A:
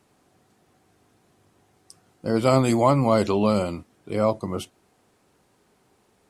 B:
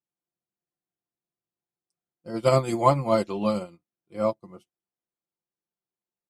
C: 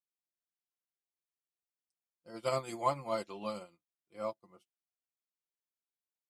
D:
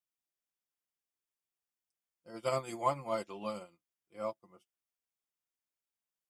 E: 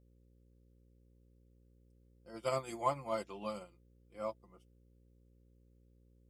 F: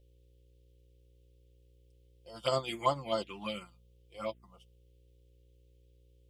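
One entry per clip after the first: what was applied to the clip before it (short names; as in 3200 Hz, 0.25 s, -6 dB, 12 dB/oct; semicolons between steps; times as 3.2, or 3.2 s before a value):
comb 5.8 ms, depth 59%; upward expander 2.5:1, over -38 dBFS
low shelf 450 Hz -11.5 dB; gain -8.5 dB
notch 4100 Hz, Q 6.2
buzz 60 Hz, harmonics 9, -64 dBFS -6 dB/oct; gain -2 dB
envelope phaser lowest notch 210 Hz, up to 2400 Hz, full sweep at -32 dBFS; bell 3100 Hz +14.5 dB 0.96 oct; gain +5 dB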